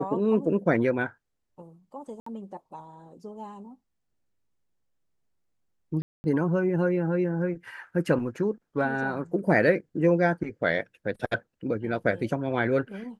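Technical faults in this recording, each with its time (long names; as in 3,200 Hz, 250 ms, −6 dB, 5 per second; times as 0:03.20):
0:02.20–0:02.26: drop-out 64 ms
0:06.02–0:06.24: drop-out 220 ms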